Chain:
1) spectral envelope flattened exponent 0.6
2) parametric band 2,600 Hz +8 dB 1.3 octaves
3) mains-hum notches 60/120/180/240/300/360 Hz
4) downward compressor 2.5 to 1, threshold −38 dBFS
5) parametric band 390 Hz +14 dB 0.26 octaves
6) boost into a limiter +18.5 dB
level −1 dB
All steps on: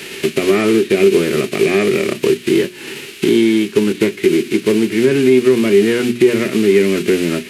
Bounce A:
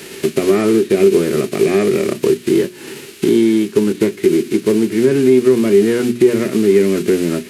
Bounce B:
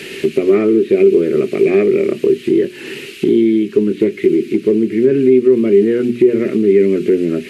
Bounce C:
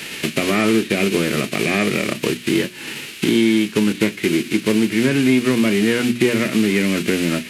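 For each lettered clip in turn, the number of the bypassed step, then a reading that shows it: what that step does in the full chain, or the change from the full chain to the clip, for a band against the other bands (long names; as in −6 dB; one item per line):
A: 2, 2 kHz band −5.5 dB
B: 1, 4 kHz band −10.0 dB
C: 5, 500 Hz band −8.5 dB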